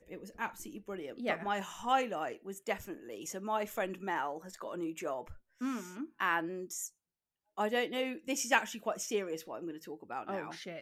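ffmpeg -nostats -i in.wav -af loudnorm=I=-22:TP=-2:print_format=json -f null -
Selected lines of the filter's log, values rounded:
"input_i" : "-36.5",
"input_tp" : "-11.6",
"input_lra" : "3.5",
"input_thresh" : "-46.6",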